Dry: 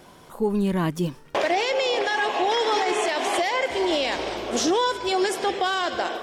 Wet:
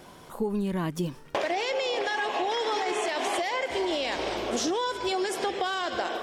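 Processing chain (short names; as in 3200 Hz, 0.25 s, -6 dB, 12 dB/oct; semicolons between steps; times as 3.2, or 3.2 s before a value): compressor, threshold -25 dBFS, peak gain reduction 7 dB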